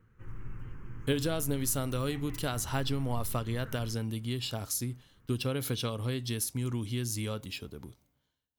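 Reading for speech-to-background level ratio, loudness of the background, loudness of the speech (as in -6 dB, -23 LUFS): 14.0 dB, -47.5 LUFS, -33.5 LUFS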